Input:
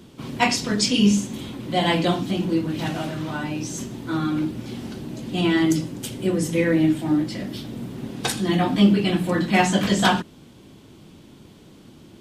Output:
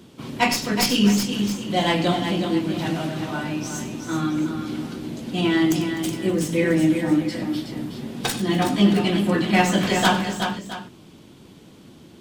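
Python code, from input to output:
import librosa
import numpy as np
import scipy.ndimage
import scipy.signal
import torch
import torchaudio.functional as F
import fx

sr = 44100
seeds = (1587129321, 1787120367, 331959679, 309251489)

y = fx.tracing_dist(x, sr, depth_ms=0.052)
y = fx.low_shelf(y, sr, hz=74.0, db=-7.0)
y = fx.echo_multitap(y, sr, ms=(95, 252, 371, 667), db=(-14.5, -20.0, -7.0, -15.0))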